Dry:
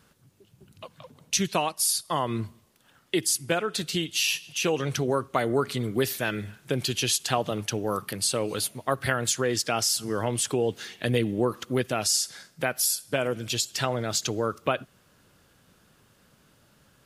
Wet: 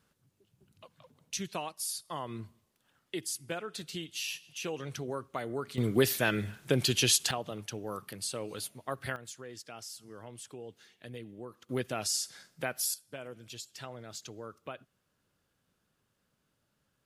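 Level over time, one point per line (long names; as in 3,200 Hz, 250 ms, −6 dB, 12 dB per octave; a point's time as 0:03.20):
−11.5 dB
from 0:05.78 0 dB
from 0:07.31 −10.5 dB
from 0:09.16 −20 dB
from 0:11.69 −7.5 dB
from 0:12.94 −17 dB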